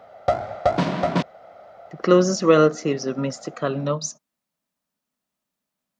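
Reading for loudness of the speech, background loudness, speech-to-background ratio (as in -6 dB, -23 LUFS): -21.0 LUFS, -24.0 LUFS, 3.0 dB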